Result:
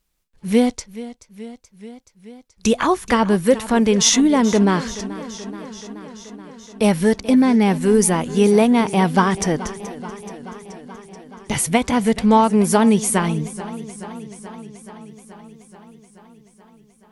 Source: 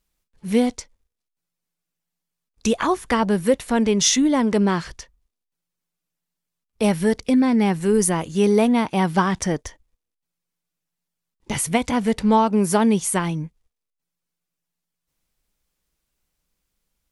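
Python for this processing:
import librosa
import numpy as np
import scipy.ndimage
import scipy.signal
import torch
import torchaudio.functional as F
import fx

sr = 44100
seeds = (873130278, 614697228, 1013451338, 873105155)

y = fx.echo_warbled(x, sr, ms=429, feedback_pct=72, rate_hz=2.8, cents=65, wet_db=-16.5)
y = F.gain(torch.from_numpy(y), 3.0).numpy()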